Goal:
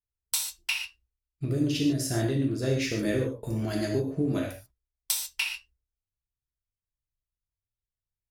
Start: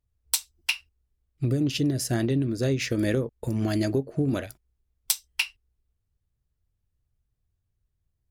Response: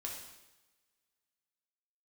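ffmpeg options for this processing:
-filter_complex "[0:a]agate=range=-16dB:threshold=-59dB:ratio=16:detection=peak[a];[1:a]atrim=start_sample=2205,afade=t=out:st=0.2:d=0.01,atrim=end_sample=9261[b];[a][b]afir=irnorm=-1:irlink=0"

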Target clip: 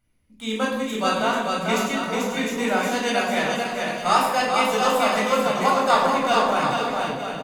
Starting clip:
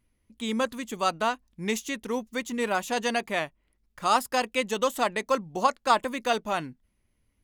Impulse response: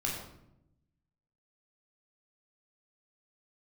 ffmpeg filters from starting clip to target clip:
-filter_complex "[0:a]lowshelf=f=140:g=-7,aecho=1:1:440|726|911.9|1033|1111:0.631|0.398|0.251|0.158|0.1[a];[1:a]atrim=start_sample=2205[b];[a][b]afir=irnorm=-1:irlink=0"

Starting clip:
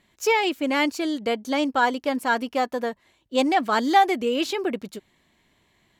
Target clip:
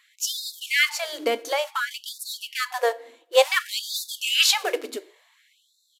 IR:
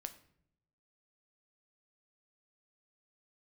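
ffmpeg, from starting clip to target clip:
-filter_complex "[0:a]asettb=1/sr,asplit=3[a][b][c];[a]atrim=end=0.984[d];[b]atrim=start=0.98:end=1.91,asetpts=PTS-STARTPTS,afade=t=in:d=0.004:c=qsin,afade=t=out:st=0.926:d=0.004:c=qsin,acompressor=threshold=-25dB:ratio=8[e];[c]atrim=start=1.906[f];[d][e]acrossfade=d=0.004:c1=hsin:c2=qsin[g];[g][f]acrossfade=d=0.004:c1=qsin:c2=hsin,asplit=3[h][i][j];[h]afade=t=out:st=4.13:d=0.02[k];[i]highshelf=f=2.6k:g=10.5,afade=t=in:st=4.13:d=0.02,afade=t=out:st=4.53:d=0.02[l];[j]afade=t=in:st=4.53:d=0.02[m];[k][l][m]amix=inputs=3:normalize=0,acrusher=bits=5:mode=log:mix=0:aa=0.000001,asplit=2[n][o];[1:a]atrim=start_sample=2205[p];[o][p]afir=irnorm=-1:irlink=0,volume=4.5dB[q];[n][q]amix=inputs=2:normalize=0,aresample=32000,aresample=44100,afftfilt=real='re*gte(b*sr/1024,250*pow(3600/250,0.5+0.5*sin(2*PI*0.56*pts/sr)))':imag='im*gte(b*sr/1024,250*pow(3600/250,0.5+0.5*sin(2*PI*0.56*pts/sr)))':win_size=1024:overlap=0.75"

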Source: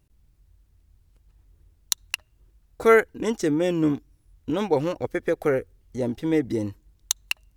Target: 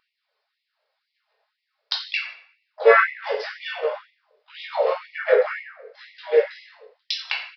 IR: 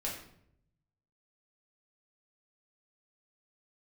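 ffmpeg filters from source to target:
-filter_complex "[0:a]highpass=f=68:p=1,equalizer=f=2.9k:w=2:g=-4,aphaser=in_gain=1:out_gain=1:delay=4.9:decay=0.44:speed=0.38:type=sinusoidal,asplit=4[a][b][c][d];[b]asetrate=33038,aresample=44100,atempo=1.33484,volume=-18dB[e];[c]asetrate=37084,aresample=44100,atempo=1.18921,volume=-4dB[f];[d]asetrate=55563,aresample=44100,atempo=0.793701,volume=-12dB[g];[a][e][f][g]amix=inputs=4:normalize=0[h];[1:a]atrim=start_sample=2205[i];[h][i]afir=irnorm=-1:irlink=0,aresample=11025,aresample=44100,afftfilt=real='re*gte(b*sr/1024,390*pow(1900/390,0.5+0.5*sin(2*PI*2*pts/sr)))':imag='im*gte(b*sr/1024,390*pow(1900/390,0.5+0.5*sin(2*PI*2*pts/sr)))':win_size=1024:overlap=0.75,volume=3dB"

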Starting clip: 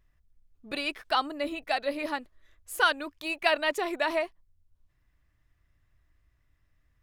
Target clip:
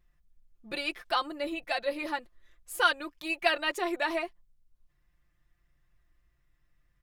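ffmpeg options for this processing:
-af "aecho=1:1:5.7:0.72,volume=-3dB"

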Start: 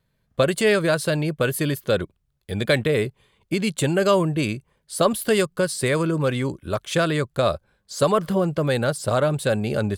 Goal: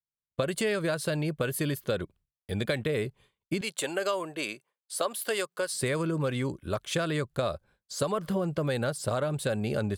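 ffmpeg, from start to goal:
-filter_complex "[0:a]asettb=1/sr,asplit=3[a][b][c];[a]atrim=end=3.614[d];[b]atrim=start=3.61:end=5.73,asetpts=PTS-STARTPTS,afade=t=in:d=0.004:c=qsin,afade=t=out:st=2.116:d=0.004:c=qsin,highpass=500[e];[c]atrim=start=5.726[f];[d][e]acrossfade=d=0.004:c1=hsin:c2=qsin[g];[g][f]acrossfade=d=0.004:c1=qsin:c2=hsin,agate=range=-33dB:threshold=-46dB:ratio=3:detection=peak,acompressor=threshold=-21dB:ratio=6,volume=-4dB"

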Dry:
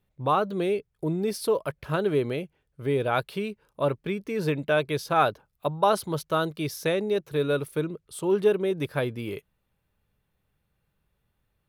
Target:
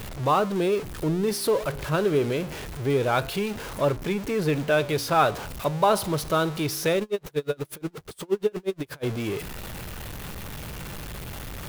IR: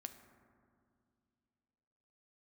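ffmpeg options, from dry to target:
-filter_complex "[0:a]aeval=exprs='val(0)+0.5*0.0299*sgn(val(0))':c=same,flanger=delay=8.8:depth=9.7:regen=-86:speed=0.24:shape=sinusoidal,asplit=3[a][b][c];[a]afade=t=out:st=6.99:d=0.02[d];[b]aeval=exprs='val(0)*pow(10,-34*(0.5-0.5*cos(2*PI*8.4*n/s))/20)':c=same,afade=t=in:st=6.99:d=0.02,afade=t=out:st=9.03:d=0.02[e];[c]afade=t=in:st=9.03:d=0.02[f];[d][e][f]amix=inputs=3:normalize=0,volume=5dB"

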